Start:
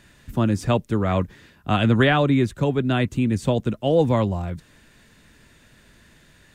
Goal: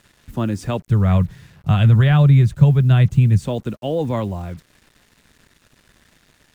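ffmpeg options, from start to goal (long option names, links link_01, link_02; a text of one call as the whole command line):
ffmpeg -i in.wav -filter_complex "[0:a]alimiter=limit=-12dB:level=0:latency=1,asplit=3[link_01][link_02][link_03];[link_01]afade=type=out:start_time=0.86:duration=0.02[link_04];[link_02]lowshelf=frequency=200:width_type=q:width=3:gain=9,afade=type=in:start_time=0.86:duration=0.02,afade=type=out:start_time=3.42:duration=0.02[link_05];[link_03]afade=type=in:start_time=3.42:duration=0.02[link_06];[link_04][link_05][link_06]amix=inputs=3:normalize=0,acrusher=bits=7:mix=0:aa=0.5,volume=-1dB" out.wav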